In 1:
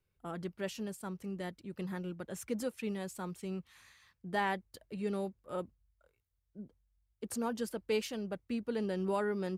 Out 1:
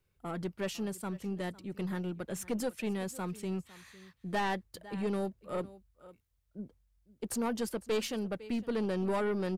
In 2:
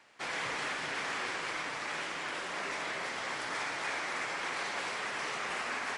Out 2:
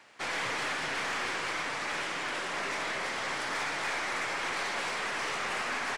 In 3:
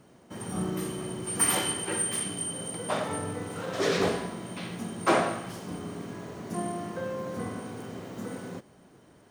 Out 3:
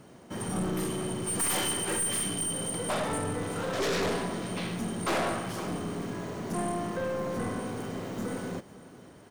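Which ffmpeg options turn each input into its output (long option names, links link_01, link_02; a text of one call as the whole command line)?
ffmpeg -i in.wav -af "aecho=1:1:504:0.0944,aeval=exprs='(tanh(35.5*val(0)+0.25)-tanh(0.25))/35.5':channel_layout=same,volume=5dB" out.wav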